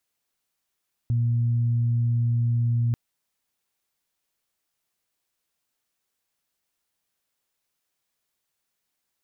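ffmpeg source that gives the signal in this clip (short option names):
-f lavfi -i "aevalsrc='0.106*sin(2*PI*118*t)+0.0133*sin(2*PI*236*t)':d=1.84:s=44100"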